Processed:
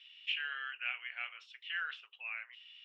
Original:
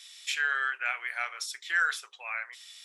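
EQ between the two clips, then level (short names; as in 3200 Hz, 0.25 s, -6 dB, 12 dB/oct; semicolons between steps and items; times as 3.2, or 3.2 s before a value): ladder low-pass 2900 Hz, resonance 90%; low shelf 380 Hz -7 dB; -1.5 dB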